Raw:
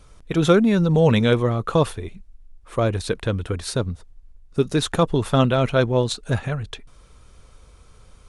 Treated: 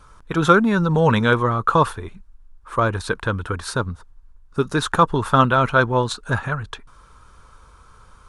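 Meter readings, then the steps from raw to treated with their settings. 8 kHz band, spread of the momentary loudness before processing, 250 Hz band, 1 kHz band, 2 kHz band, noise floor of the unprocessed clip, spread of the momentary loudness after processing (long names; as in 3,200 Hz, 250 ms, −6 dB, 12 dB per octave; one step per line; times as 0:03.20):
−1.0 dB, 14 LU, −1.0 dB, +8.5 dB, +8.0 dB, −50 dBFS, 14 LU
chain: flat-topped bell 1,200 Hz +11 dB 1.1 octaves
level −1 dB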